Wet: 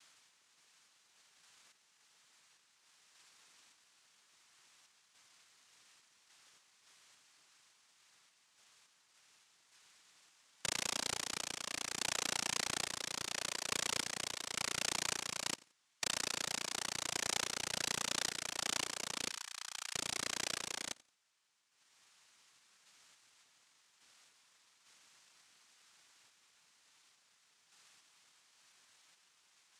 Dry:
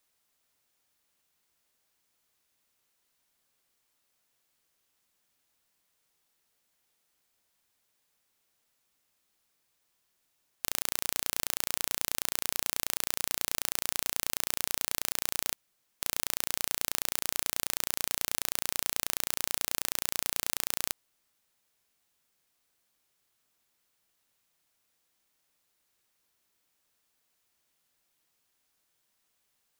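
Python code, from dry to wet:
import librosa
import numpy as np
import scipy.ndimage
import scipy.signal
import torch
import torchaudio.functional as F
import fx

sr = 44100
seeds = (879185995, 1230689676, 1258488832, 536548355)

p1 = fx.dereverb_blind(x, sr, rt60_s=1.3)
p2 = fx.differentiator(p1, sr, at=(19.29, 19.93))
p3 = (np.mod(10.0 ** (10.0 / 20.0) * p2 + 1.0, 2.0) - 1.0) / 10.0 ** (10.0 / 20.0)
p4 = p2 + F.gain(torch.from_numpy(p3), -3.0).numpy()
p5 = fx.tremolo_random(p4, sr, seeds[0], hz=3.5, depth_pct=55)
p6 = fx.noise_vocoder(p5, sr, seeds[1], bands=2)
p7 = p6 + fx.echo_feedback(p6, sr, ms=87, feedback_pct=23, wet_db=-23, dry=0)
y = F.gain(torch.from_numpy(p7), 2.0).numpy()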